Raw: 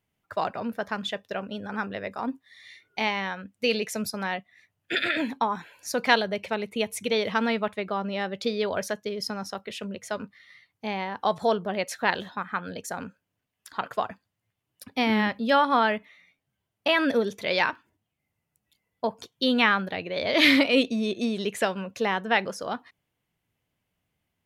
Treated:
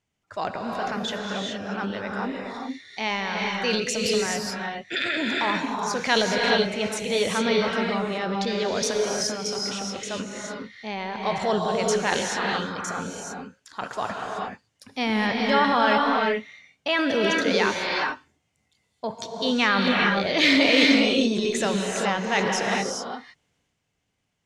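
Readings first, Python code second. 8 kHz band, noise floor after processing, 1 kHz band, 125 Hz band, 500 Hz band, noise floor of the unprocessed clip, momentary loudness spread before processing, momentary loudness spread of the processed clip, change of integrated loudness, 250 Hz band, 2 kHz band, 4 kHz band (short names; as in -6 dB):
+9.5 dB, -74 dBFS, +2.0 dB, +5.0 dB, +3.0 dB, -82 dBFS, 13 LU, 14 LU, +3.0 dB, +3.0 dB, +3.0 dB, +4.5 dB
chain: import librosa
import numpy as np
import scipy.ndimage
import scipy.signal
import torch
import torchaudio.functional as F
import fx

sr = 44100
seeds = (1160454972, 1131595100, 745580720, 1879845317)

y = fx.transient(x, sr, attack_db=-3, sustain_db=8)
y = fx.lowpass_res(y, sr, hz=6900.0, q=2.0)
y = fx.rev_gated(y, sr, seeds[0], gate_ms=450, shape='rising', drr_db=-0.5)
y = y * 10.0 ** (-1.0 / 20.0)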